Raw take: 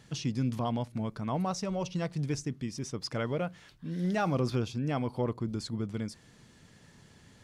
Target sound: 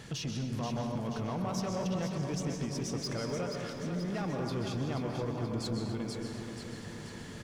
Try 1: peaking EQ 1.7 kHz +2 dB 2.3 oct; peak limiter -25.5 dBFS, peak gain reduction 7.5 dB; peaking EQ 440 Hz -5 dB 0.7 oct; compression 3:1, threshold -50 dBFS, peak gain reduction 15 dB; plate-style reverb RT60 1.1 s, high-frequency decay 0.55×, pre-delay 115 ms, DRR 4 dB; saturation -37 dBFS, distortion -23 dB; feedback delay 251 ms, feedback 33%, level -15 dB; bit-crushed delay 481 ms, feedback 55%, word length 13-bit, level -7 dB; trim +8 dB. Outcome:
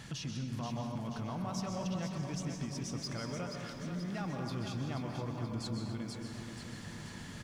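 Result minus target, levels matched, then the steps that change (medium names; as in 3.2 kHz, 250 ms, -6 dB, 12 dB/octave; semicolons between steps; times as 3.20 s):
compression: peak gain reduction +3.5 dB; 500 Hz band -3.5 dB
change: second peaking EQ 440 Hz +3.5 dB 0.7 oct; change: compression 3:1, threshold -43 dBFS, peak gain reduction 11 dB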